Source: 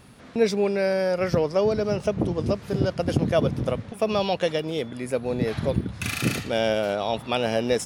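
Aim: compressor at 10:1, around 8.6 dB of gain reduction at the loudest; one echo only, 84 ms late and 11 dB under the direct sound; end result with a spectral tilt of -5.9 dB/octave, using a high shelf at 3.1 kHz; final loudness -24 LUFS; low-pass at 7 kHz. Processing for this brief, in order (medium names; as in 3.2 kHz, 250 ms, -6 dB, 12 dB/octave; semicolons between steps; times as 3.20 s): low-pass 7 kHz; treble shelf 3.1 kHz -8 dB; compression 10:1, threshold -25 dBFS; delay 84 ms -11 dB; trim +6.5 dB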